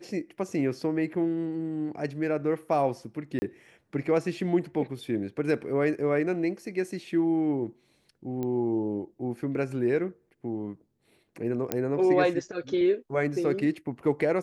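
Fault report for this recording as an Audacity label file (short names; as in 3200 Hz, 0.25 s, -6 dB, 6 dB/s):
3.390000	3.420000	gap 30 ms
8.430000	8.430000	pop -21 dBFS
11.720000	11.720000	pop -11 dBFS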